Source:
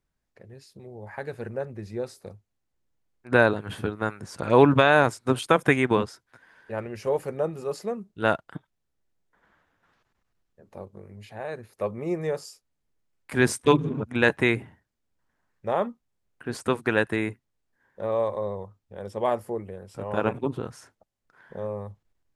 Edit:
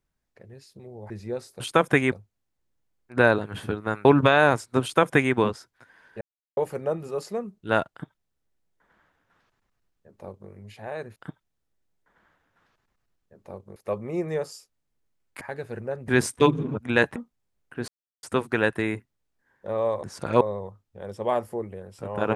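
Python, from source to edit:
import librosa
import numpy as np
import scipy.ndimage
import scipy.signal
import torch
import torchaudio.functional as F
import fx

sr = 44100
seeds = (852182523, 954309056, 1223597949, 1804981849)

y = fx.edit(x, sr, fx.move(start_s=1.1, length_s=0.67, to_s=13.34),
    fx.move(start_s=4.2, length_s=0.38, to_s=18.37),
    fx.duplicate(start_s=5.35, length_s=0.52, to_s=2.27),
    fx.silence(start_s=6.74, length_s=0.36),
    fx.duplicate(start_s=8.43, length_s=2.6, to_s=11.69),
    fx.cut(start_s=14.42, length_s=1.43),
    fx.insert_silence(at_s=16.57, length_s=0.35), tone=tone)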